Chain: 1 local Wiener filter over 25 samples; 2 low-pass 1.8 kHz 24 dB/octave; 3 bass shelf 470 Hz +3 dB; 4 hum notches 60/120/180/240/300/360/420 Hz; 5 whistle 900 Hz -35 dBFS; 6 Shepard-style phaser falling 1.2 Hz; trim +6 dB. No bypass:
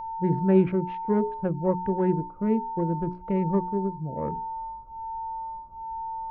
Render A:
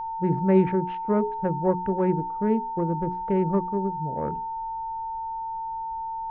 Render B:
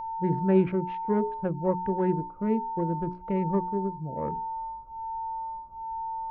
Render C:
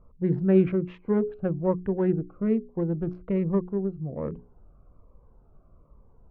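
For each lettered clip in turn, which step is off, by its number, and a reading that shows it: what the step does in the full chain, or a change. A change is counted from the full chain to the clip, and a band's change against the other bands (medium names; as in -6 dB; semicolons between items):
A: 6, 1 kHz band +2.5 dB; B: 3, 1 kHz band +2.0 dB; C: 5, 1 kHz band -15.0 dB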